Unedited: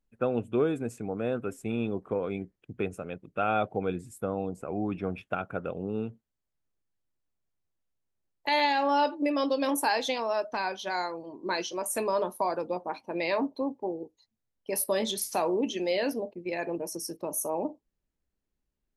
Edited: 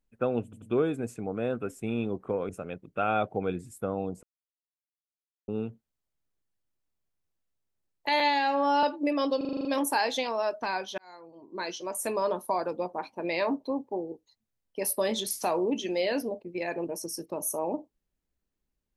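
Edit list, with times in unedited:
0.44 stutter 0.09 s, 3 plays
2.31–2.89 cut
4.63–5.88 mute
8.6–9.02 stretch 1.5×
9.56 stutter 0.04 s, 8 plays
10.89–12.42 fade in equal-power

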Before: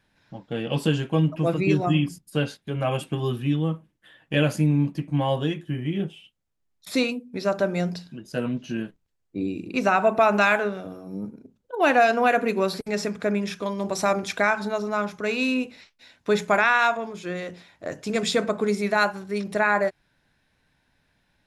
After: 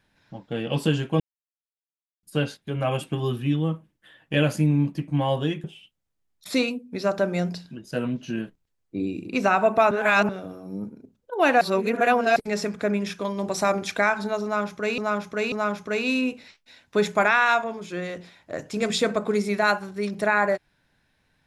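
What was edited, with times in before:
1.2–2.23 mute
5.64–6.05 cut
10.32–10.7 reverse
12.02–12.77 reverse
14.85–15.39 loop, 3 plays

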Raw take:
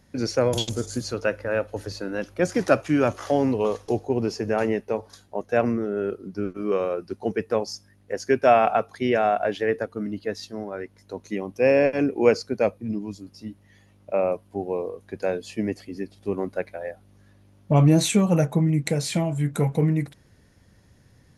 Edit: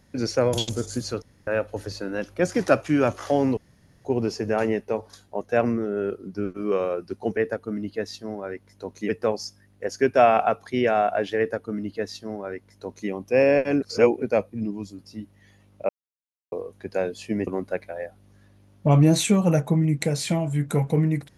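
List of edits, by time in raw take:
1.22–1.47 room tone
3.57–4.05 room tone
9.66–11.38 copy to 7.37
12.1–12.5 reverse
14.17–14.8 mute
15.75–16.32 cut

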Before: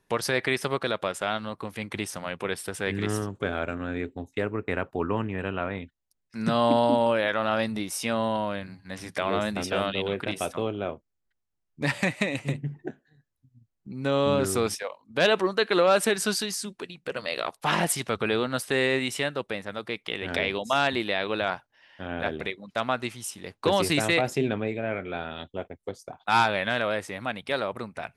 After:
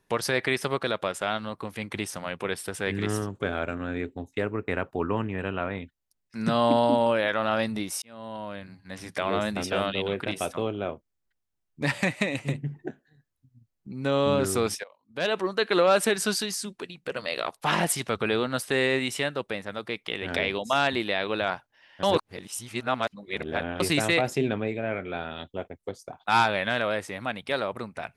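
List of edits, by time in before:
8.02–9.55 fade in equal-power
14.84–15.74 fade in, from -20 dB
22.03–23.8 reverse

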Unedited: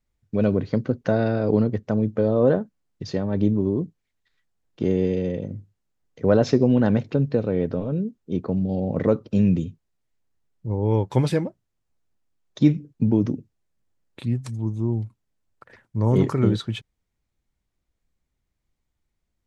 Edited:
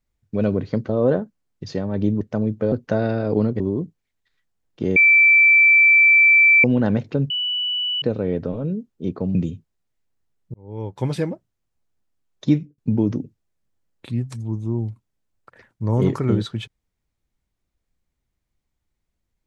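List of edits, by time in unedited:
0.89–1.77 swap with 2.28–3.6
4.96–6.64 bleep 2330 Hz -9.5 dBFS
7.3 add tone 2960 Hz -20.5 dBFS 0.72 s
8.63–9.49 cut
10.68–11.46 fade in
12.64–12.92 fade out

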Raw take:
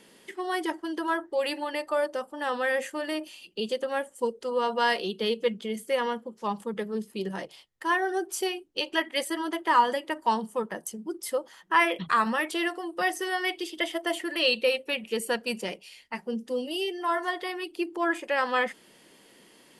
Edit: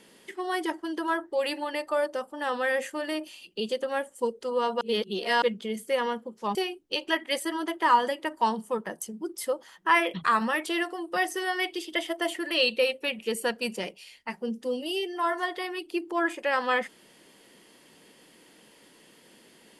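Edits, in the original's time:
4.81–5.42 reverse
6.55–8.4 cut

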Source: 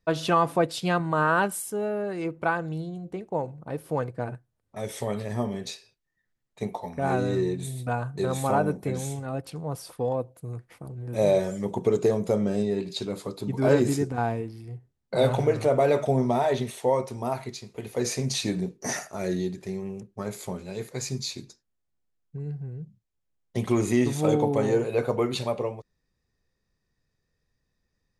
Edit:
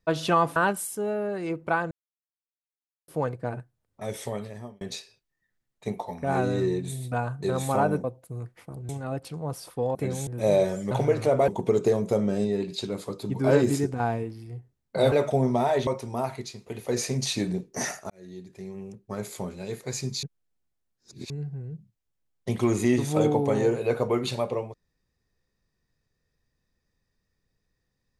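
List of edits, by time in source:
0.56–1.31 cut
2.66–3.83 mute
4.89–5.56 fade out
8.79–9.11 swap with 10.17–11.02
15.3–15.87 move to 11.66
16.62–16.95 cut
19.18–20.31 fade in
21.31–22.38 reverse

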